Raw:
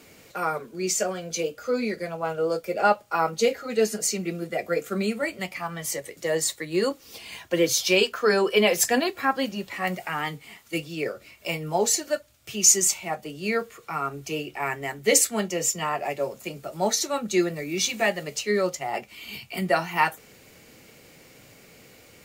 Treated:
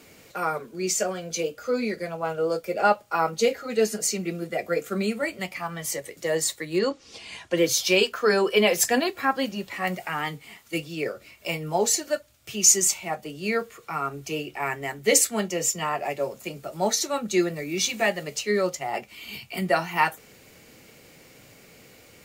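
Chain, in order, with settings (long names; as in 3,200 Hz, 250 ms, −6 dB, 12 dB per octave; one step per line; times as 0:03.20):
0:06.78–0:07.56: low-pass filter 6,000 Hz → 11,000 Hz 24 dB per octave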